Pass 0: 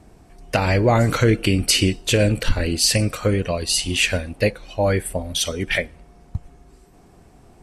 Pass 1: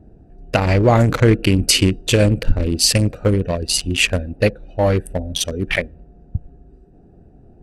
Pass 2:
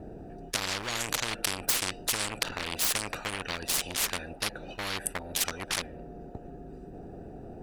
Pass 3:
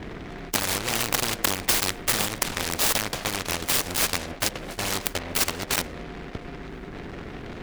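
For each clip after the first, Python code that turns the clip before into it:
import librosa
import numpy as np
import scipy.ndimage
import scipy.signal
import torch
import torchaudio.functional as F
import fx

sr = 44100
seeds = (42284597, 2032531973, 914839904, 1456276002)

y1 = fx.wiener(x, sr, points=41)
y1 = y1 * 10.0 ** (4.0 / 20.0)
y2 = 10.0 ** (-8.0 / 20.0) * np.tanh(y1 / 10.0 ** (-8.0 / 20.0))
y2 = fx.spectral_comp(y2, sr, ratio=10.0)
y3 = fx.noise_mod_delay(y2, sr, seeds[0], noise_hz=1300.0, depth_ms=0.21)
y3 = y3 * 10.0 ** (6.5 / 20.0)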